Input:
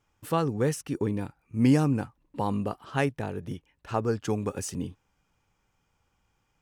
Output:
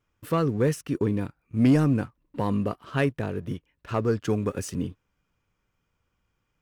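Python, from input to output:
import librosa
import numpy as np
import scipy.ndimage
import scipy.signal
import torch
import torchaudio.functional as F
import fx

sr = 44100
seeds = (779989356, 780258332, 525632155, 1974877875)

y = fx.peak_eq(x, sr, hz=8100.0, db=-6.0, octaves=1.7)
y = fx.leveller(y, sr, passes=1)
y = fx.peak_eq(y, sr, hz=820.0, db=-10.5, octaves=0.25)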